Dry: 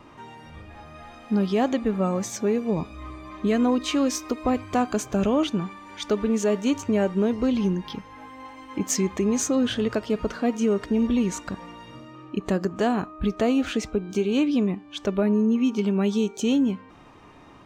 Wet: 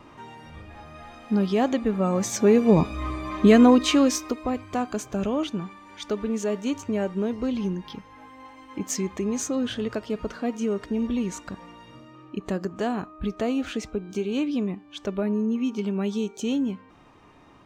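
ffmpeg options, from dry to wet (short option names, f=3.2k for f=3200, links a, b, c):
-af "volume=8dB,afade=t=in:st=2.04:d=0.72:silence=0.398107,afade=t=out:st=3.47:d=1:silence=0.251189"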